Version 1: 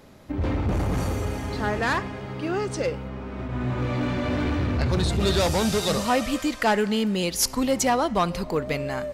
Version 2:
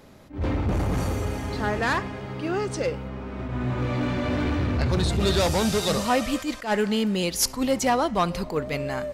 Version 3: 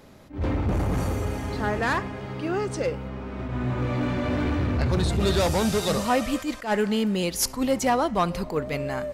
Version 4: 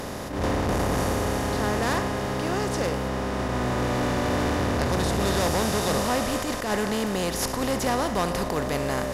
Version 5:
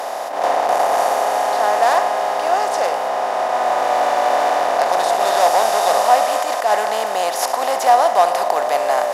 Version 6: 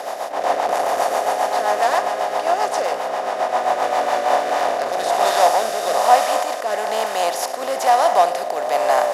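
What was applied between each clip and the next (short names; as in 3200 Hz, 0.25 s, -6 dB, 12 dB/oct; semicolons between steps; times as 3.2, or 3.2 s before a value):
attack slew limiter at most 180 dB/s
dynamic EQ 4400 Hz, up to -3 dB, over -43 dBFS, Q 0.73
per-bin compression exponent 0.4; gain -7 dB
resonant high-pass 710 Hz, resonance Q 4.9; gain +4.5 dB
rotary speaker horn 7.5 Hz, later 1.1 Hz, at 3.86; gain +1 dB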